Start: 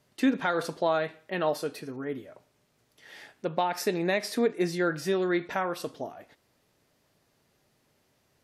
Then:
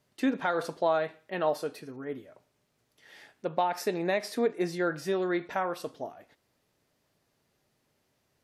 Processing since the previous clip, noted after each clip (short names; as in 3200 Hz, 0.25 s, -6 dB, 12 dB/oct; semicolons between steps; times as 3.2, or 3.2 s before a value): dynamic EQ 740 Hz, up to +5 dB, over -37 dBFS, Q 0.74; gain -4.5 dB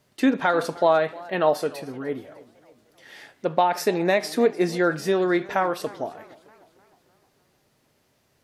warbling echo 0.304 s, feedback 50%, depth 160 cents, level -21 dB; gain +7.5 dB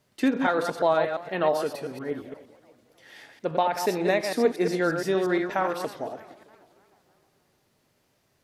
reverse delay 0.117 s, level -6 dB; gain -3.5 dB